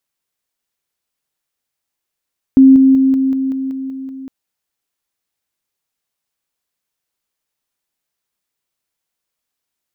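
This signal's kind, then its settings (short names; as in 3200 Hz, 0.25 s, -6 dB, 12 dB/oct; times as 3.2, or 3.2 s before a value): level ladder 266 Hz -2.5 dBFS, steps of -3 dB, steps 9, 0.19 s 0.00 s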